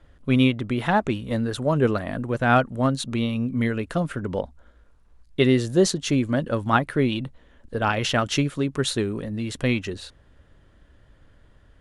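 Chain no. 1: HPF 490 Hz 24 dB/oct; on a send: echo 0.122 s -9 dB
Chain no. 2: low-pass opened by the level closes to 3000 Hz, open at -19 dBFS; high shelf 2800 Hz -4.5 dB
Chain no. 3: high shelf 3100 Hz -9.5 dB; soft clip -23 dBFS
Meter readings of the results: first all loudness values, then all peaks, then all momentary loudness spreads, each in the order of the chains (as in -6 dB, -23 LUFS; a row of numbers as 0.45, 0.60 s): -27.5, -24.0, -29.5 LUFS; -4.5, -6.0, -23.0 dBFS; 13, 10, 5 LU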